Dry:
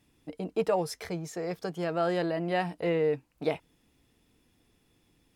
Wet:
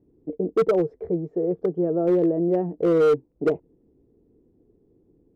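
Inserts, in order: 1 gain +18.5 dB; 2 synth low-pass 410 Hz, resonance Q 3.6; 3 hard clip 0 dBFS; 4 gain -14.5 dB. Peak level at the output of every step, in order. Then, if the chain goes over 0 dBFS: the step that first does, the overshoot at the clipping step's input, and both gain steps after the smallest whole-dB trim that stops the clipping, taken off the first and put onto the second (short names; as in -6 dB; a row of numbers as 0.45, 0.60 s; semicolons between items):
+3.0, +9.0, 0.0, -14.5 dBFS; step 1, 9.0 dB; step 1 +9.5 dB, step 4 -5.5 dB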